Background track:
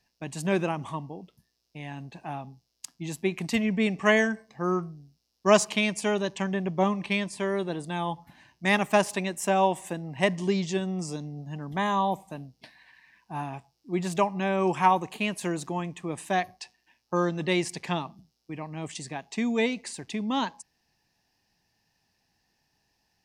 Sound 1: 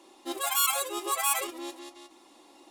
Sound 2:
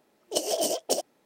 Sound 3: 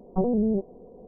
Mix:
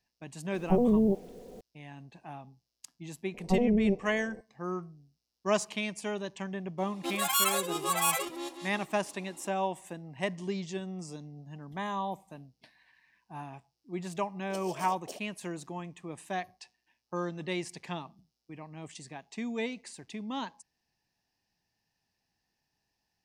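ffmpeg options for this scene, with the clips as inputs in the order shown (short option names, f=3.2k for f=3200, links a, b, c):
-filter_complex "[3:a]asplit=2[a][b];[0:a]volume=-8.5dB[c];[a]acrusher=bits=9:mix=0:aa=0.000001[d];[1:a]highshelf=f=8.9k:g=-3.5[e];[d]atrim=end=1.07,asetpts=PTS-STARTPTS,volume=-0.5dB,afade=t=in:d=0.004:c=hsin,afade=t=out:st=1.066:d=0.004:c=hsin,adelay=540[f];[b]atrim=end=1.07,asetpts=PTS-STARTPTS,volume=-2dB,afade=t=in:d=0.004:c=hsin,afade=t=out:st=1.066:d=0.004:c=hsin,adelay=3340[g];[e]atrim=end=2.7,asetpts=PTS-STARTPTS,afade=t=in:d=0.004:c=hsin,afade=t=out:st=2.696:d=0.004:c=hsin,adelay=6780[h];[2:a]atrim=end=1.25,asetpts=PTS-STARTPTS,volume=-17.5dB,afade=t=in:d=0.004:c=hsin,afade=t=out:st=1.246:d=0.004:c=hsin,adelay=14180[i];[c][f][g][h][i]amix=inputs=5:normalize=0"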